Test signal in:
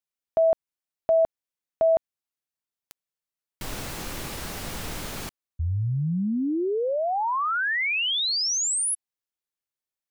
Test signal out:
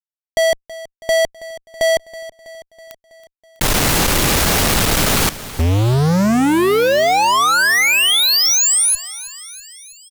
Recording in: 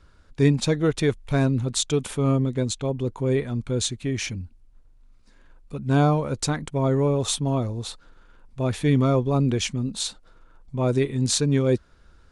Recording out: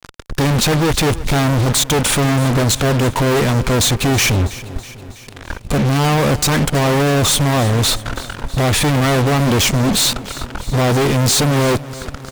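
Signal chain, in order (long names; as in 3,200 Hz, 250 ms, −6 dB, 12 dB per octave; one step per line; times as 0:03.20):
in parallel at 0 dB: downward compressor 6 to 1, threshold −30 dBFS
on the sum: fuzz pedal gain 45 dB, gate −41 dBFS
repeating echo 325 ms, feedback 60%, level −17 dB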